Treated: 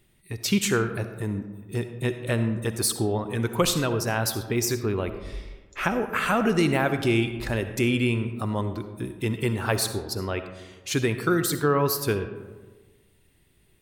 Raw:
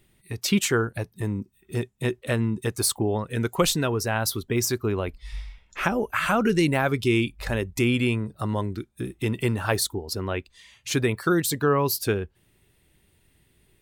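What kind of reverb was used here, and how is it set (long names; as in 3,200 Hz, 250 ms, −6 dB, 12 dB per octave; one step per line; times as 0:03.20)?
comb and all-pass reverb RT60 1.4 s, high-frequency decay 0.4×, pre-delay 25 ms, DRR 9 dB
level −1 dB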